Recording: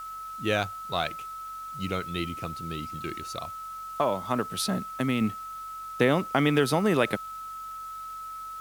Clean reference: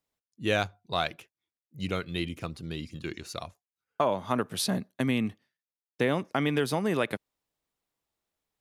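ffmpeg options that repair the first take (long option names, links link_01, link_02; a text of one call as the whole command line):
ffmpeg -i in.wav -af "bandreject=frequency=47:width_type=h:width=4,bandreject=frequency=94:width_type=h:width=4,bandreject=frequency=141:width_type=h:width=4,bandreject=frequency=188:width_type=h:width=4,bandreject=frequency=1300:width=30,afwtdn=0.002,asetnsamples=nb_out_samples=441:pad=0,asendcmd='5.21 volume volume -4dB',volume=0dB" out.wav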